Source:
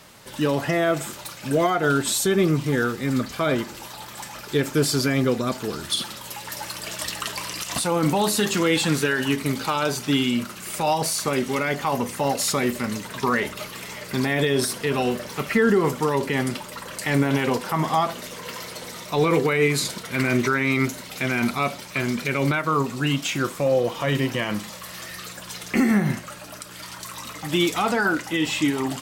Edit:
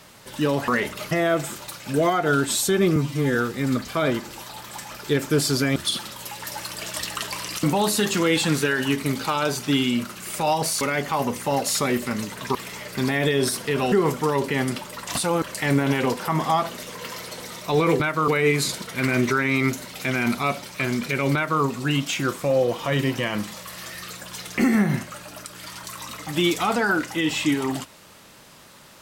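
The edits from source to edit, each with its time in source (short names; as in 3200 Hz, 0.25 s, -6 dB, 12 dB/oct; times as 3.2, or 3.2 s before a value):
2.53–2.79 stretch 1.5×
5.2–5.81 cut
7.68–8.03 move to 16.86
11.21–11.54 cut
13.28–13.71 move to 0.68
15.08–15.71 cut
22.5–22.78 copy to 19.44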